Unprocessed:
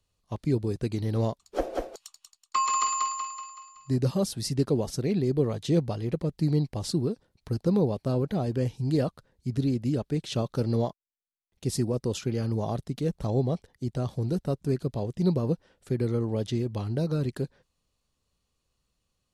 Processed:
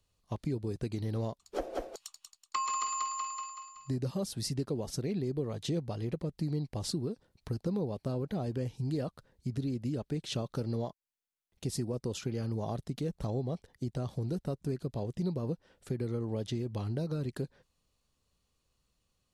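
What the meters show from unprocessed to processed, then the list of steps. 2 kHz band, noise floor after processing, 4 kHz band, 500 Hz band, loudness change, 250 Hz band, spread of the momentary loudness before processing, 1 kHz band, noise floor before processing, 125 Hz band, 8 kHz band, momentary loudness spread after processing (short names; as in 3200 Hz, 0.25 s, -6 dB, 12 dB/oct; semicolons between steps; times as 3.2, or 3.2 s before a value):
-5.5 dB, -80 dBFS, -4.0 dB, -7.5 dB, -7.0 dB, -7.5 dB, 8 LU, -6.5 dB, -79 dBFS, -7.0 dB, -5.5 dB, 7 LU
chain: compressor 3:1, threshold -33 dBFS, peak gain reduction 10.5 dB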